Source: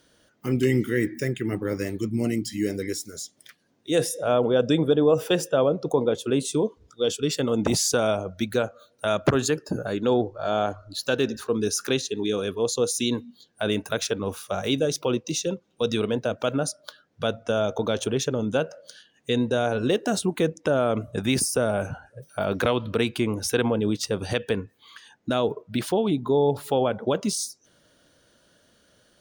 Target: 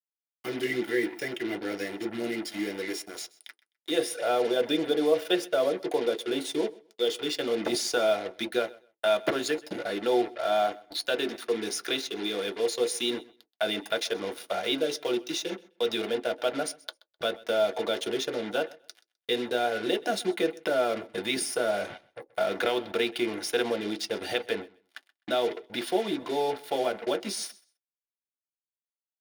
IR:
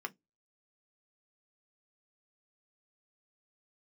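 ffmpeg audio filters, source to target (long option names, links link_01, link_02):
-filter_complex "[0:a]asplit=2[link_01][link_02];[link_02]acompressor=threshold=-34dB:ratio=6,volume=3dB[link_03];[link_01][link_03]amix=inputs=2:normalize=0,acrusher=bits=4:mix=0:aa=0.5,aecho=1:1:128|256:0.0794|0.0151[link_04];[1:a]atrim=start_sample=2205,asetrate=79380,aresample=44100[link_05];[link_04][link_05]afir=irnorm=-1:irlink=0"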